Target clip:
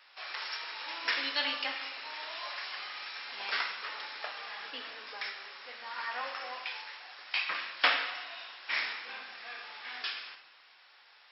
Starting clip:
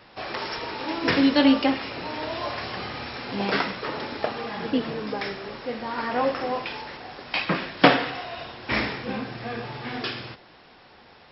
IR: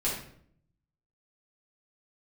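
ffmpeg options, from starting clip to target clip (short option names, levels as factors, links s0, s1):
-filter_complex "[0:a]highpass=1400,asplit=2[s0][s1];[1:a]atrim=start_sample=2205,asetrate=23814,aresample=44100[s2];[s1][s2]afir=irnorm=-1:irlink=0,volume=0.15[s3];[s0][s3]amix=inputs=2:normalize=0,volume=0.501"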